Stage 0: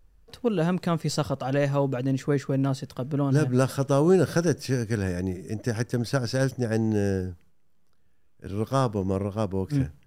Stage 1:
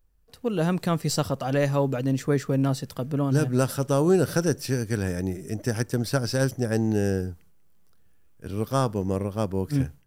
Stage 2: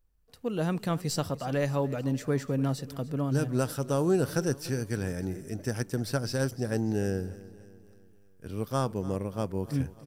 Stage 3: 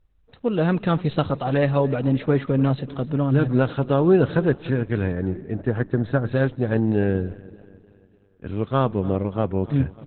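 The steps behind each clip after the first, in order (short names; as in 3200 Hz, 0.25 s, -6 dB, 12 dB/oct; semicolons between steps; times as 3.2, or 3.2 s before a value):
high shelf 9700 Hz +11.5 dB; AGC gain up to 11 dB; gain -8.5 dB
feedback echo 0.294 s, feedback 49%, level -18 dB; gain -5 dB
spectral gain 5.12–6.32, 1900–11000 Hz -7 dB; gain +9 dB; Opus 8 kbps 48000 Hz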